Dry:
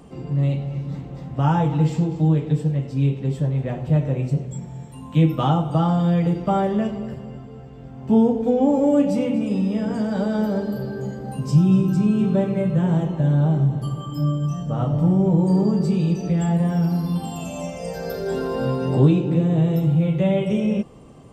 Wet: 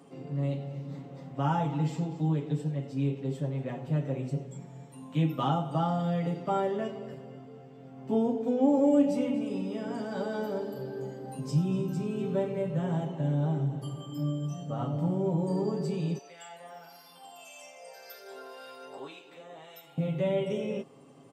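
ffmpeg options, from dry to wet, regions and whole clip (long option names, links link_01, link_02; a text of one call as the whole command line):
ffmpeg -i in.wav -filter_complex "[0:a]asettb=1/sr,asplit=3[link_01][link_02][link_03];[link_01]atrim=end=16.184[link_04];[link_02]atrim=start=16.18:end=19.98,asetpts=PTS-STARTPTS,afade=type=in:duration=0.004:curve=qsin,afade=type=out:start_time=3.796:duration=0.004:curve=qsin,highpass=990,acrossover=split=1400[link_05][link_06];[link_05]aeval=exprs='val(0)*(1-0.5/2+0.5/2*cos(2*PI*1.8*n/s))':channel_layout=same[link_07];[link_06]aeval=exprs='val(0)*(1-0.5/2-0.5/2*cos(2*PI*1.8*n/s))':channel_layout=same[link_08];[link_07][link_08]amix=inputs=2:normalize=0[link_09];[link_03]atrim=start=19.976[link_10];[link_04][link_09]acrossfade=duration=0.004:curve1=hsin:curve2=qsin[link_11];[link_11][link_10]acrossfade=duration=0.004:curve1=qsin:curve2=hsin,highpass=200,aecho=1:1:7.3:0.6,volume=-8dB" out.wav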